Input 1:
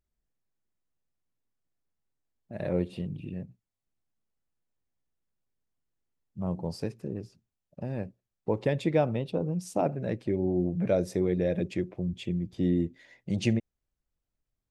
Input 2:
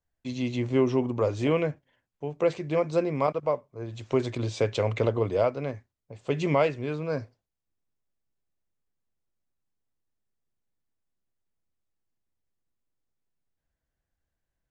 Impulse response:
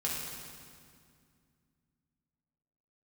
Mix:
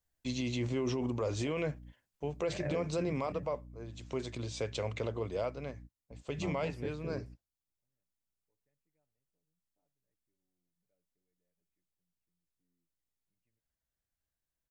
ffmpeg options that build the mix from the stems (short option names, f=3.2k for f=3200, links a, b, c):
-filter_complex "[0:a]highshelf=f=2.9k:t=q:w=3:g=-10,aecho=1:1:6.9:0.55,aeval=exprs='val(0)+0.00794*(sin(2*PI*60*n/s)+sin(2*PI*2*60*n/s)/2+sin(2*PI*3*60*n/s)/3+sin(2*PI*4*60*n/s)/4+sin(2*PI*5*60*n/s)/5)':c=same,volume=-7dB[a];[1:a]highshelf=f=3.4k:g=9.5,volume=-3dB,afade=t=out:st=3.22:d=0.62:silence=0.446684,asplit=2[b][c];[c]apad=whole_len=648600[d];[a][d]sidechaingate=range=-55dB:threshold=-56dB:ratio=16:detection=peak[e];[e][b]amix=inputs=2:normalize=0,alimiter=level_in=1dB:limit=-24dB:level=0:latency=1:release=37,volume=-1dB"